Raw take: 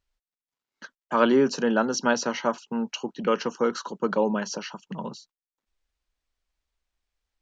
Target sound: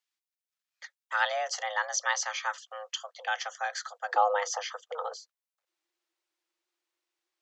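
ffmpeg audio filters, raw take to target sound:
ffmpeg -i in.wav -af "asetnsamples=nb_out_samples=441:pad=0,asendcmd='4.14 highpass f 190',highpass=frequency=1500:poles=1,afreqshift=300" out.wav

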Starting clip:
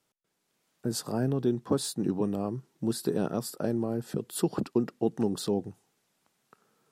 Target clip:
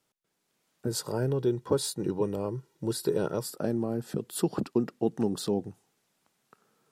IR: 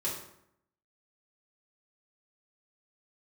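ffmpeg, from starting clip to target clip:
-filter_complex "[0:a]asettb=1/sr,asplit=3[link_01][link_02][link_03];[link_01]atrim=end=0.874[link_04];[link_02]atrim=start=0.87:end=3.46,asetpts=PTS-STARTPTS,afade=type=in:duration=0.004:curve=qsin,afade=type=out:start_time=2.586:duration=0.004:curve=qsin,aecho=1:1:2.1:0.59,atrim=end_sample=114219[link_05];[link_03]atrim=start=3.456[link_06];[link_04][link_05]acrossfade=duration=0.004:curve1=hsin:curve2=qsin[link_07];[link_07][link_06]acrossfade=duration=0.004:curve1=qsin:curve2=hsin"

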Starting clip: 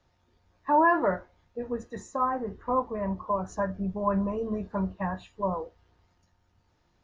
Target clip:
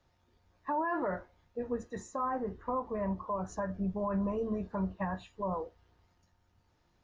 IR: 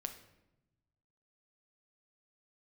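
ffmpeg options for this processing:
-af "alimiter=limit=-22dB:level=0:latency=1:release=89,volume=-2.5dB"

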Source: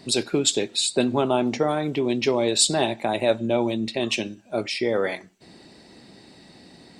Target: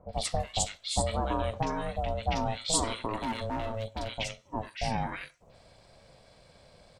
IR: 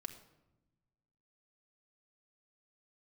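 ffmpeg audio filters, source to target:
-filter_complex "[0:a]acrossover=split=1000|4200[link_01][link_02][link_03];[link_02]adelay=90[link_04];[link_03]adelay=130[link_05];[link_01][link_04][link_05]amix=inputs=3:normalize=0,asettb=1/sr,asplit=3[link_06][link_07][link_08];[link_06]atrim=end=3.174[link_09];[link_07]atrim=start=3.17:end=4.17,asetpts=PTS-STARTPTS,afade=type=in:duration=0.004:curve=qsin,afade=type=out:start_time=0.996:duration=0.004:curve=qsin,asoftclip=type=hard:threshold=-21.5dB[link_10];[link_08]atrim=start=4.166[link_11];[link_09][link_10]acrossfade=duration=0.004:curve1=hsin:curve2=qsin[link_12];[link_12][link_11]acrossfade=duration=0.004:curve1=qsin:curve2=hsin,aeval=exprs='val(0)*sin(2*PI*330*n/s)':channel_layout=same,volume=-4.5dB"

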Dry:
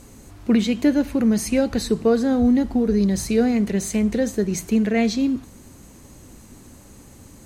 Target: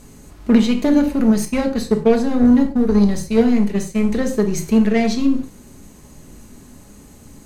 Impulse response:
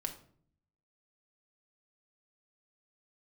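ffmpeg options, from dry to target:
-filter_complex "[0:a]asettb=1/sr,asplit=3[link_01][link_02][link_03];[link_01]atrim=end=1.454[link_04];[link_02]atrim=start=1.45:end=4,asetpts=PTS-STARTPTS,afade=type=in:duration=0.004:curve=qsin,afade=type=out:start_time=2.546:duration=0.004:curve=qsin,agate=range=-33dB:threshold=-19dB:ratio=3:detection=peak[link_05];[link_03]atrim=start=3.996[link_06];[link_04][link_05]acrossfade=duration=0.004:curve1=hsin:curve2=qsin[link_07];[link_07][link_06]acrossfade=duration=0.004:curve1=qsin:curve2=hsin,aeval=exprs='0.447*(cos(1*acos(clip(val(0)/0.447,-1,1)))-cos(1*PI/2))+0.126*(cos(2*acos(clip(val(0)/0.447,-1,1)))-cos(2*PI/2))+0.0282*(cos(8*acos(clip(val(0)/0.447,-1,1)))-cos(8*PI/2))':channel_layout=same[link_08];[1:a]atrim=start_sample=2205,atrim=end_sample=6174[link_09];[link_08][link_09]afir=irnorm=-1:irlink=0,volume=1.5dB"

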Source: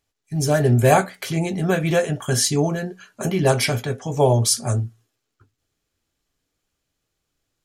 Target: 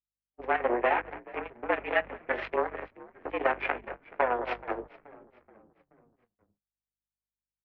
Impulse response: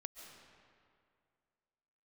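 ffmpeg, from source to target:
-filter_complex "[0:a]asplit=2[link_01][link_02];[link_02]adelay=203,lowpass=frequency=1600:poles=1,volume=-10dB,asplit=2[link_03][link_04];[link_04]adelay=203,lowpass=frequency=1600:poles=1,volume=0.44,asplit=2[link_05][link_06];[link_06]adelay=203,lowpass=frequency=1600:poles=1,volume=0.44,asplit=2[link_07][link_08];[link_08]adelay=203,lowpass=frequency=1600:poles=1,volume=0.44,asplit=2[link_09][link_10];[link_10]adelay=203,lowpass=frequency=1600:poles=1,volume=0.44[link_11];[link_03][link_05][link_07][link_09][link_11]amix=inputs=5:normalize=0[link_12];[link_01][link_12]amix=inputs=2:normalize=0,aeval=exprs='0.794*(cos(1*acos(clip(val(0)/0.794,-1,1)))-cos(1*PI/2))+0.00501*(cos(3*acos(clip(val(0)/0.794,-1,1)))-cos(3*PI/2))+0.0251*(cos(4*acos(clip(val(0)/0.794,-1,1)))-cos(4*PI/2))+0.112*(cos(7*acos(clip(val(0)/0.794,-1,1)))-cos(7*PI/2))':channel_layout=same,highpass=frequency=210:width_type=q:width=0.5412,highpass=frequency=210:width_type=q:width=1.307,lowpass=frequency=2300:width_type=q:width=0.5176,lowpass=frequency=2300:width_type=q:width=0.7071,lowpass=frequency=2300:width_type=q:width=1.932,afreqshift=120,acompressor=threshold=-23dB:ratio=10,aeval=exprs='val(0)+0.00251*(sin(2*PI*50*n/s)+sin(2*PI*2*50*n/s)/2+sin(2*PI*3*50*n/s)/3+sin(2*PI*4*50*n/s)/4+sin(2*PI*5*50*n/s)/5)':channel_layout=same,agate=range=-50dB:threshold=-40dB:ratio=16:detection=peak,asplit=2[link_13][link_14];[link_14]asplit=4[link_15][link_16][link_17][link_18];[link_15]adelay=428,afreqshift=-63,volume=-20.5dB[link_19];[link_16]adelay=856,afreqshift=-126,volume=-26.3dB[link_20];[link_17]adelay=1284,afreqshift=-189,volume=-32.2dB[link_21];[link_18]adelay=1712,afreqshift=-252,volume=-38dB[link_22];[link_19][link_20][link_21][link_22]amix=inputs=4:normalize=0[link_23];[link_13][link_23]amix=inputs=2:normalize=0,adynamicequalizer=threshold=0.00631:dfrequency=1600:dqfactor=0.7:tfrequency=1600:tqfactor=0.7:attack=5:release=100:ratio=0.375:range=3:mode=boostabove:tftype=highshelf"

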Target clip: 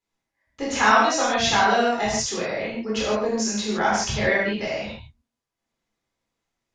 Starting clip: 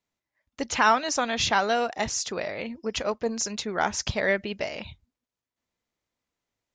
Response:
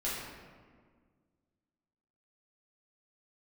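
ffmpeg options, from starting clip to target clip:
-filter_complex "[1:a]atrim=start_sample=2205,atrim=end_sample=4410,asetrate=24696,aresample=44100[link_01];[0:a][link_01]afir=irnorm=-1:irlink=0,volume=-3dB"

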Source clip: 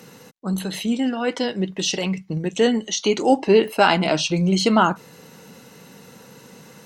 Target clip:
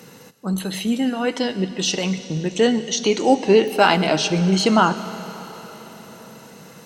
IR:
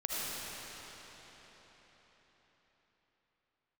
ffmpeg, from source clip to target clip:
-filter_complex "[0:a]asplit=2[link_01][link_02];[1:a]atrim=start_sample=2205,highshelf=frequency=5600:gain=8.5[link_03];[link_02][link_03]afir=irnorm=-1:irlink=0,volume=-18dB[link_04];[link_01][link_04]amix=inputs=2:normalize=0"

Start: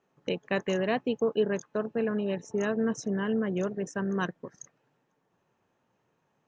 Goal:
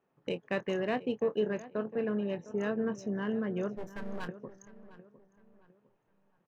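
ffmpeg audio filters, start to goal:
ffmpeg -i in.wav -filter_complex "[0:a]adynamicsmooth=sensitivity=3:basefreq=4100,asettb=1/sr,asplit=3[link_01][link_02][link_03];[link_01]atrim=end=3.764[link_04];[link_02]atrim=start=3.76:end=4.27,asetpts=PTS-STARTPTS,afade=type=in:duration=0.004:curve=qsin,afade=type=out:start_time=0.506:duration=0.004:curve=qsin,aeval=exprs='max(val(0),0)':channel_layout=same[link_05];[link_03]atrim=start=4.266[link_06];[link_04][link_05]acrossfade=duration=0.004:curve1=hsin:curve2=qsin[link_07];[link_07][link_06]acrossfade=duration=0.004:curve1=qsin:curve2=hsin,asplit=2[link_08][link_09];[link_09]adelay=24,volume=-12dB[link_10];[link_08][link_10]amix=inputs=2:normalize=0,asplit=2[link_11][link_12];[link_12]adelay=706,lowpass=frequency=2400:poles=1,volume=-16dB,asplit=2[link_13][link_14];[link_14]adelay=706,lowpass=frequency=2400:poles=1,volume=0.36,asplit=2[link_15][link_16];[link_16]adelay=706,lowpass=frequency=2400:poles=1,volume=0.36[link_17];[link_13][link_15][link_17]amix=inputs=3:normalize=0[link_18];[link_11][link_18]amix=inputs=2:normalize=0,volume=-4dB" out.wav

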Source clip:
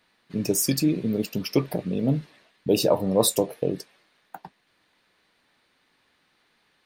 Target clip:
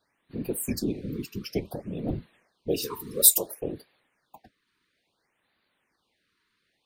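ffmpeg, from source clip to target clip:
ffmpeg -i in.wav -filter_complex "[0:a]asplit=3[link_01][link_02][link_03];[link_01]afade=type=out:start_time=2.82:duration=0.02[link_04];[link_02]aemphasis=mode=production:type=riaa,afade=type=in:start_time=2.82:duration=0.02,afade=type=out:start_time=3.59:duration=0.02[link_05];[link_03]afade=type=in:start_time=3.59:duration=0.02[link_06];[link_04][link_05][link_06]amix=inputs=3:normalize=0,afftfilt=real='hypot(re,im)*cos(2*PI*random(0))':imag='hypot(re,im)*sin(2*PI*random(1))':win_size=512:overlap=0.75,afftfilt=real='re*(1-between(b*sr/1024,620*pow(7000/620,0.5+0.5*sin(2*PI*0.58*pts/sr))/1.41,620*pow(7000/620,0.5+0.5*sin(2*PI*0.58*pts/sr))*1.41))':imag='im*(1-between(b*sr/1024,620*pow(7000/620,0.5+0.5*sin(2*PI*0.58*pts/sr))/1.41,620*pow(7000/620,0.5+0.5*sin(2*PI*0.58*pts/sr))*1.41))':win_size=1024:overlap=0.75,volume=-1dB" out.wav

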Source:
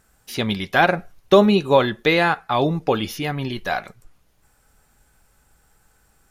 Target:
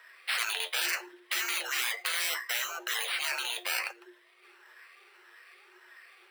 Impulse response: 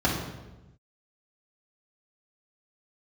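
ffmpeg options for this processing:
-af "afftfilt=real='re*pow(10,15/40*sin(2*PI*(0.87*log(max(b,1)*sr/1024/100)/log(2)-(1.7)*(pts-256)/sr)))':imag='im*pow(10,15/40*sin(2*PI*(0.87*log(max(b,1)*sr/1024/100)/log(2)-(1.7)*(pts-256)/sr)))':win_size=1024:overlap=0.75,acrusher=samples=7:mix=1:aa=0.000001,asoftclip=type=tanh:threshold=-7dB,lowshelf=frequency=270:gain=-11.5,flanger=delay=3.2:depth=7.8:regen=51:speed=0.69:shape=sinusoidal,afreqshift=350,alimiter=limit=-15dB:level=0:latency=1:release=13,afftfilt=real='re*lt(hypot(re,im),0.0501)':imag='im*lt(hypot(re,im),0.0501)':win_size=1024:overlap=0.75,equalizer=frequency=2000:width_type=o:width=1.4:gain=11.5,volume=1dB"

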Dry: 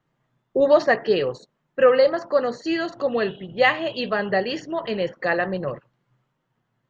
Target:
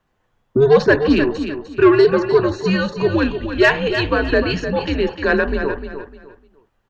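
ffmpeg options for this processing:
ffmpeg -i in.wav -af "acontrast=79,aecho=1:1:302|604|906:0.355|0.0958|0.0259,afreqshift=-140,volume=-1dB" out.wav

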